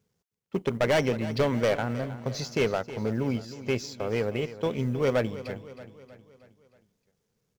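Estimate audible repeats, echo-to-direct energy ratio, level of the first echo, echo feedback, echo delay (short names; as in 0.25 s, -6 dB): 4, -13.0 dB, -14.5 dB, 51%, 0.315 s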